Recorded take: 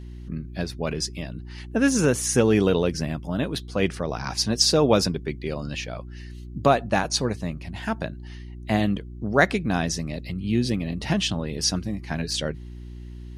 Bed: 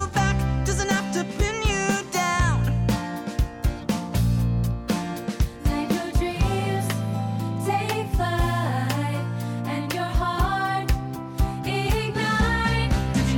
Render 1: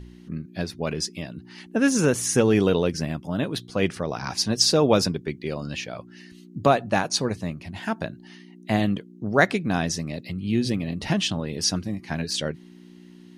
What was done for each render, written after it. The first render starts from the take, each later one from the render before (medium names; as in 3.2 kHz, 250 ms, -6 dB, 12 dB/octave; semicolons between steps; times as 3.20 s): de-hum 60 Hz, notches 2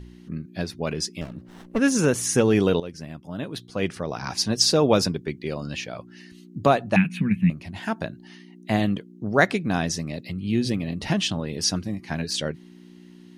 1.21–1.79 s: sliding maximum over 17 samples; 2.80–4.36 s: fade in, from -13.5 dB; 6.96–7.50 s: FFT filter 120 Hz 0 dB, 190 Hz +15 dB, 320 Hz -7 dB, 580 Hz -25 dB, 1.2 kHz -11 dB, 1.7 kHz 0 dB, 2.5 kHz +12 dB, 5 kHz -30 dB, 7.6 kHz -20 dB, 13 kHz -7 dB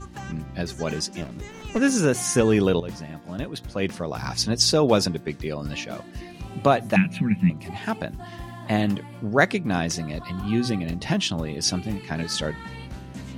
add bed -15.5 dB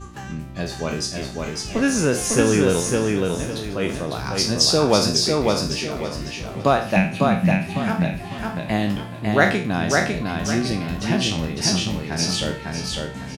spectral sustain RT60 0.43 s; on a send: feedback delay 552 ms, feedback 32%, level -3 dB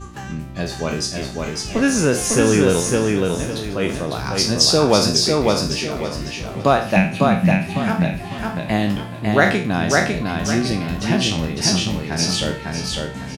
trim +2.5 dB; peak limiter -2 dBFS, peak gain reduction 2 dB